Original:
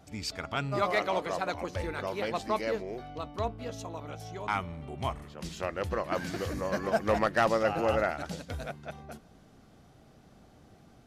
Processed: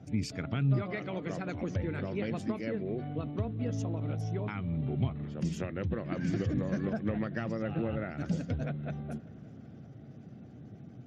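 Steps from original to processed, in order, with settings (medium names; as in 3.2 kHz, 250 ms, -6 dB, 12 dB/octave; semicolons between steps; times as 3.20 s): dynamic bell 630 Hz, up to -5 dB, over -38 dBFS, Q 0.94; band-stop 4 kHz, Q 14; spectral gate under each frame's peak -30 dB strong; compression 16:1, threshold -33 dBFS, peak gain reduction 11 dB; graphic EQ 125/250/1000/4000 Hz +9/+5/-11/-8 dB; feedback echo behind a low-pass 385 ms, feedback 67%, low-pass 2.3 kHz, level -22 dB; trim +3 dB; Speex 36 kbps 32 kHz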